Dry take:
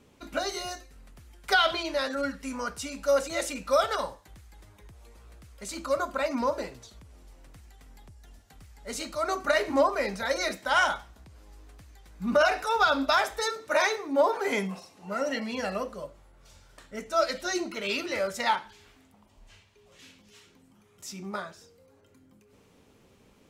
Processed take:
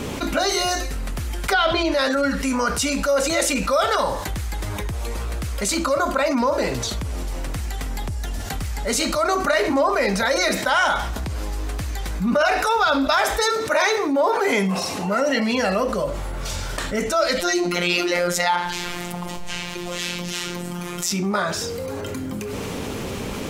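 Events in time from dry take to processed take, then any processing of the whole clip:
1.52–1.92 tilt -2 dB/oct
17.4–21.11 robotiser 176 Hz
whole clip: fast leveller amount 70%; gain +1.5 dB

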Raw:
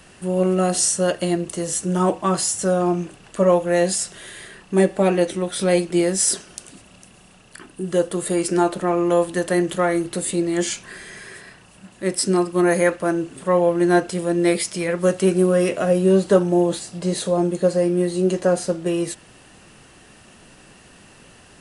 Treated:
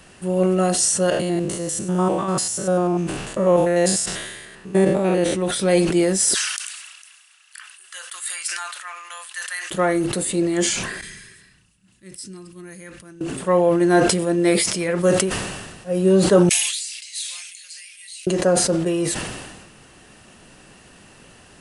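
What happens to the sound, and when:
1.1–5.36 stepped spectrum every 0.1 s
6.34–9.71 HPF 1400 Hz 24 dB/oct
11.01–13.21 passive tone stack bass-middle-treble 6-0-2
15.23–15.92 room tone, crossfade 0.16 s
16.49–18.27 Chebyshev high-pass 2200 Hz, order 4
whole clip: sustainer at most 40 dB/s

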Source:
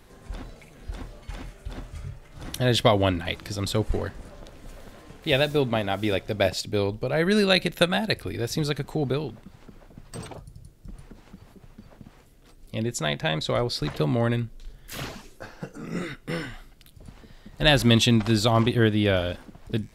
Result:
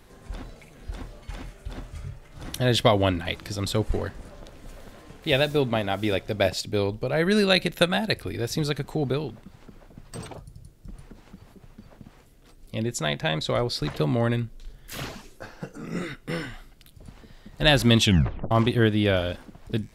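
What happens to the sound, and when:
18.03 tape stop 0.48 s

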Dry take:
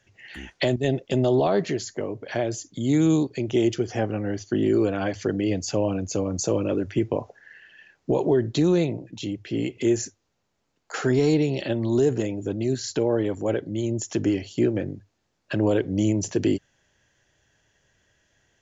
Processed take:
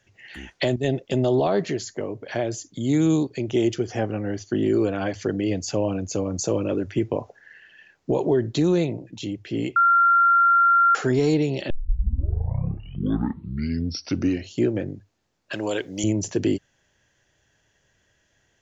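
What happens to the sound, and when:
9.76–10.95 bleep 1380 Hz -13.5 dBFS
11.7 tape start 2.88 s
15.53–16.04 tilt +4 dB/oct

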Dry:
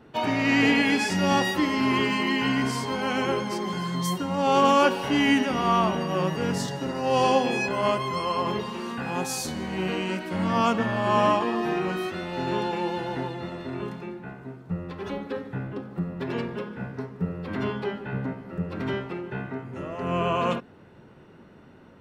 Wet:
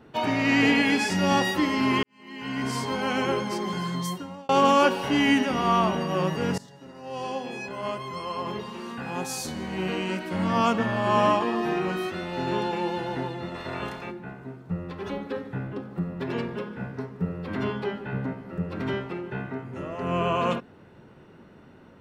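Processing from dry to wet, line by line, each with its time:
2.03–2.77 fade in quadratic
3.88–4.49 fade out
6.58–10.23 fade in, from -20 dB
13.54–14.1 spectral limiter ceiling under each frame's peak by 16 dB

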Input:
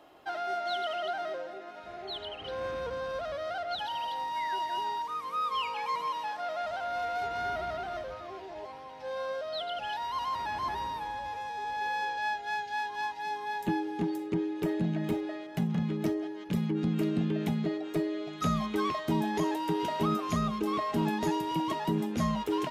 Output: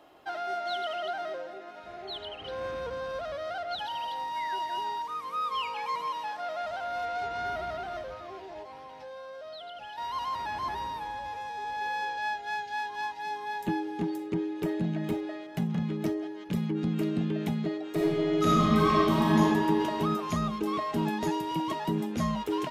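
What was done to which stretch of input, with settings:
7.06–7.46 LPF 8700 Hz
8.62–9.98 compressor, threshold -40 dBFS
17.92–19.39 reverb throw, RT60 2.5 s, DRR -6 dB

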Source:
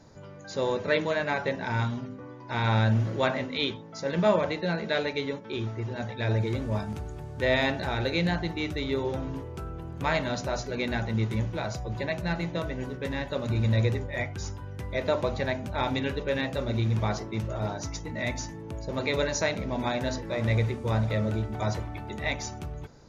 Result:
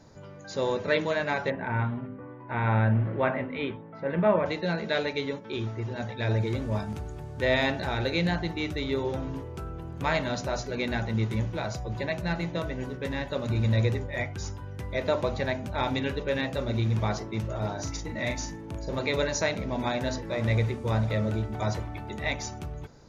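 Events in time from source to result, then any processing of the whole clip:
1.5–4.46 LPF 2400 Hz 24 dB/oct
17.74–19.01 doubler 40 ms -6 dB

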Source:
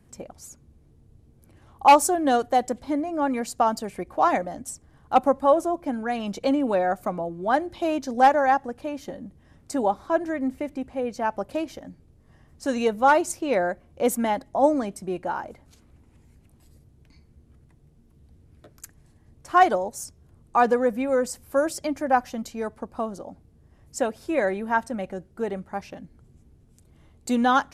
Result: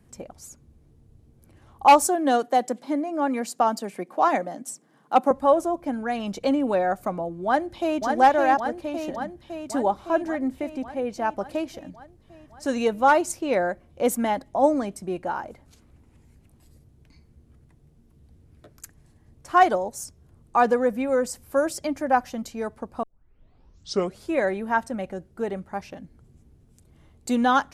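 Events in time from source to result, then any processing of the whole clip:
2.07–5.31 steep high-pass 170 Hz
7.45–8.03 echo throw 0.56 s, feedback 70%, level -4 dB
23.03 tape start 1.27 s

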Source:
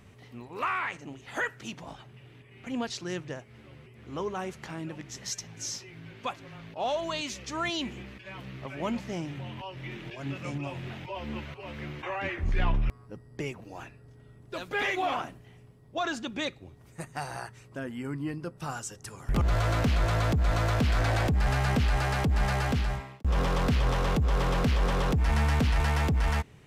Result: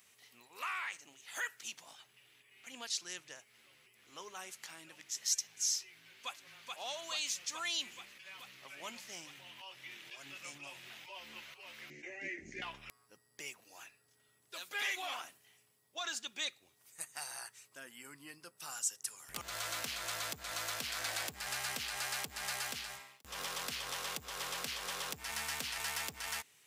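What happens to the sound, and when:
6.03–6.71 echo throw 0.43 s, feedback 75%, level -2.5 dB
11.9–12.62 EQ curve 100 Hz 0 dB, 140 Hz +8 dB, 230 Hz +12 dB, 340 Hz +13 dB, 720 Hz -6 dB, 1100 Hz -29 dB, 2000 Hz +4 dB, 3400 Hz -16 dB, 6500 Hz +1 dB, 12000 Hz -26 dB
whole clip: differentiator; gain +4.5 dB

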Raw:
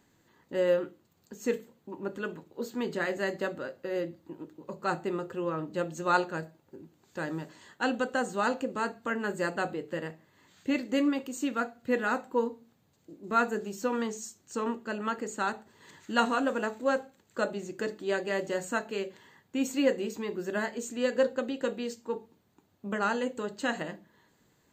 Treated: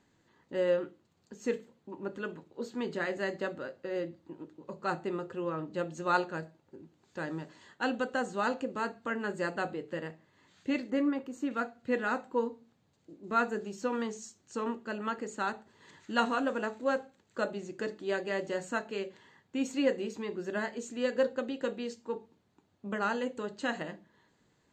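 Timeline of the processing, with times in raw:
10.9–11.51 band shelf 5100 Hz -8.5 dB 2.4 oct
whole clip: LPF 6800 Hz 12 dB/oct; gain -2.5 dB

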